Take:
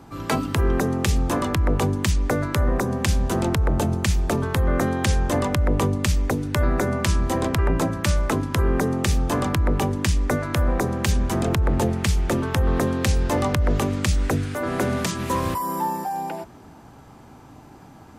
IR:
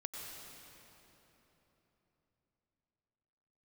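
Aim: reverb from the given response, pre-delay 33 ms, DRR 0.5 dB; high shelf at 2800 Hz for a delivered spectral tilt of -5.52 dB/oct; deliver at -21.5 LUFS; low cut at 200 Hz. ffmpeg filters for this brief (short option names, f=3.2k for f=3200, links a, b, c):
-filter_complex "[0:a]highpass=200,highshelf=f=2.8k:g=-7.5,asplit=2[a][b];[1:a]atrim=start_sample=2205,adelay=33[c];[b][c]afir=irnorm=-1:irlink=0,volume=0.5dB[d];[a][d]amix=inputs=2:normalize=0,volume=2.5dB"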